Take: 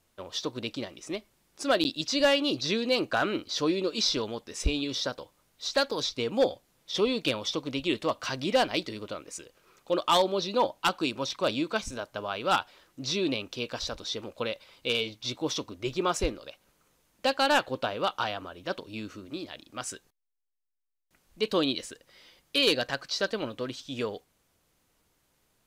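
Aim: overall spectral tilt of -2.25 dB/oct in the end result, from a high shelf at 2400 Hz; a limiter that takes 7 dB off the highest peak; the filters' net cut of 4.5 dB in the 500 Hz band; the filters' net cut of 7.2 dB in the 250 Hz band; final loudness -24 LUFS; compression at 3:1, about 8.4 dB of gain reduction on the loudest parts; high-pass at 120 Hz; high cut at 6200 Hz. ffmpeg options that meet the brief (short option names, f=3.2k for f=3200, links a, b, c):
-af "highpass=120,lowpass=6.2k,equalizer=f=250:t=o:g=-8,equalizer=f=500:t=o:g=-3.5,highshelf=f=2.4k:g=3,acompressor=threshold=-31dB:ratio=3,volume=12.5dB,alimiter=limit=-11dB:level=0:latency=1"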